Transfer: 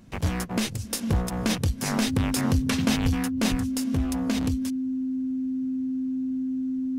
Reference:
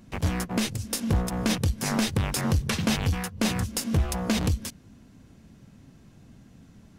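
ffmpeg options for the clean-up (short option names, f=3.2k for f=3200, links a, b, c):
-filter_complex "[0:a]bandreject=f=260:w=30,asplit=3[a][b][c];[a]afade=t=out:st=3.02:d=0.02[d];[b]highpass=f=140:w=0.5412,highpass=f=140:w=1.3066,afade=t=in:st=3.02:d=0.02,afade=t=out:st=3.14:d=0.02[e];[c]afade=t=in:st=3.14:d=0.02[f];[d][e][f]amix=inputs=3:normalize=0,asplit=3[g][h][i];[g]afade=t=out:st=3.5:d=0.02[j];[h]highpass=f=140:w=0.5412,highpass=f=140:w=1.3066,afade=t=in:st=3.5:d=0.02,afade=t=out:st=3.62:d=0.02[k];[i]afade=t=in:st=3.62:d=0.02[l];[j][k][l]amix=inputs=3:normalize=0,asetnsamples=n=441:p=0,asendcmd='3.52 volume volume 4dB',volume=0dB"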